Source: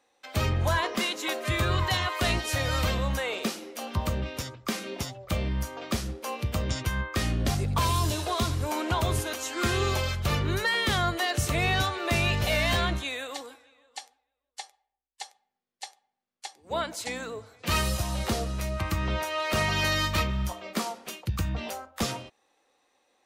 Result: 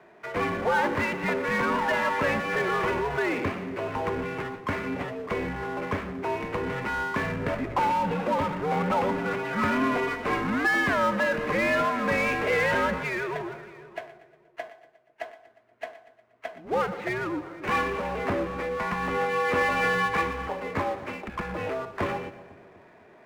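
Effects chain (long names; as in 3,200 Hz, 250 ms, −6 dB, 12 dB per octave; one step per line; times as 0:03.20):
single-sideband voice off tune −130 Hz 280–2,400 Hz
power curve on the samples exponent 0.7
echo with a time of its own for lows and highs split 510 Hz, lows 250 ms, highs 119 ms, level −15 dB
level +1.5 dB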